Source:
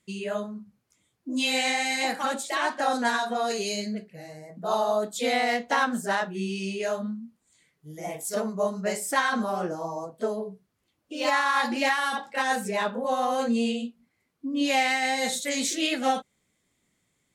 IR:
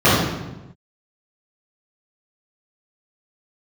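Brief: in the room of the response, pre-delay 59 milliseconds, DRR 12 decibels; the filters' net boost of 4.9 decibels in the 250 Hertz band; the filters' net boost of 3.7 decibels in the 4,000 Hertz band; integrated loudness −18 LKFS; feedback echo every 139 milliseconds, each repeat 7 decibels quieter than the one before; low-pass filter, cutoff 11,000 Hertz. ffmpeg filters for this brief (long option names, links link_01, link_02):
-filter_complex "[0:a]lowpass=11000,equalizer=frequency=250:width_type=o:gain=5.5,equalizer=frequency=4000:width_type=o:gain=4.5,aecho=1:1:139|278|417|556|695:0.447|0.201|0.0905|0.0407|0.0183,asplit=2[link_01][link_02];[1:a]atrim=start_sample=2205,adelay=59[link_03];[link_02][link_03]afir=irnorm=-1:irlink=0,volume=-39dB[link_04];[link_01][link_04]amix=inputs=2:normalize=0,volume=5.5dB"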